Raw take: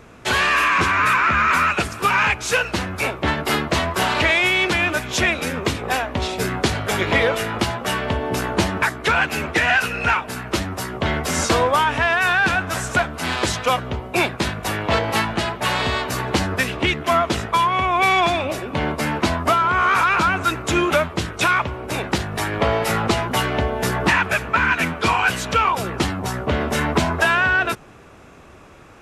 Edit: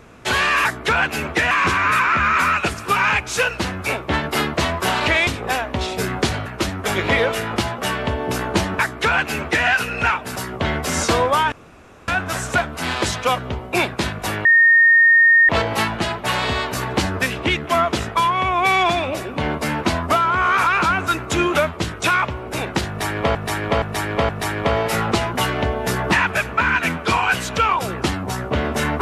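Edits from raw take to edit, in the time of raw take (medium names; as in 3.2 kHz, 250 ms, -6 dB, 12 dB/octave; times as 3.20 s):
4.41–5.68 s: delete
8.84–9.70 s: copy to 0.65 s
10.39–10.77 s: move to 6.87 s
11.93–12.49 s: room tone
14.86 s: add tone 1.84 kHz -8.5 dBFS 1.04 s
22.25–22.72 s: loop, 4 plays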